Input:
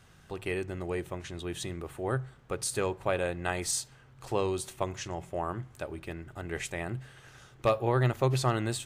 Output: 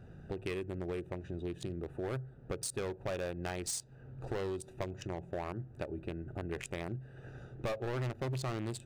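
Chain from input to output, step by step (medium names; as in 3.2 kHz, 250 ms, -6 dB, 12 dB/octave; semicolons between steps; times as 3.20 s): local Wiener filter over 41 samples; bass shelf 140 Hz -5 dB; overload inside the chain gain 29 dB; compression 4:1, threshold -49 dBFS, peak gain reduction 15 dB; trim +11 dB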